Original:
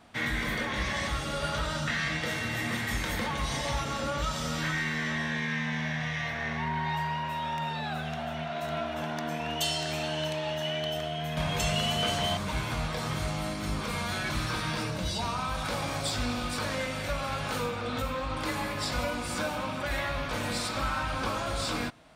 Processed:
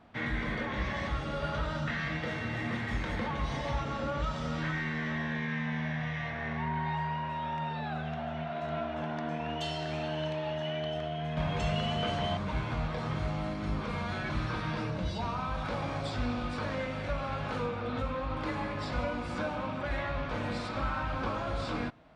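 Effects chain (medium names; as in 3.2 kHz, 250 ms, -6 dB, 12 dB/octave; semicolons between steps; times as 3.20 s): tape spacing loss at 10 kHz 25 dB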